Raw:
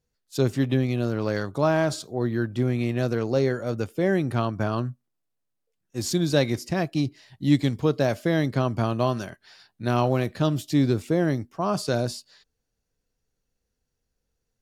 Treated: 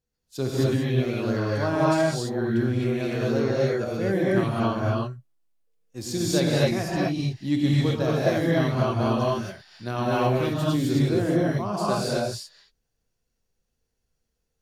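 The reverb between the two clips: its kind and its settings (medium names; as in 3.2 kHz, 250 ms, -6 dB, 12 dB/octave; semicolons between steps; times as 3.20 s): gated-style reverb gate 290 ms rising, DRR -6.5 dB; trim -6 dB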